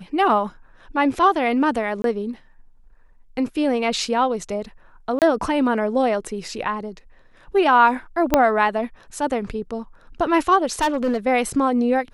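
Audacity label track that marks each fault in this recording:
2.020000	2.040000	dropout 22 ms
5.190000	5.220000	dropout 28 ms
8.340000	8.340000	pop -1 dBFS
10.810000	11.180000	clipped -16 dBFS

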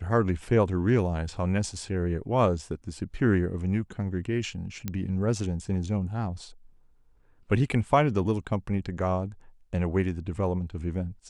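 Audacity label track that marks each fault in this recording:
4.880000	4.880000	pop -16 dBFS

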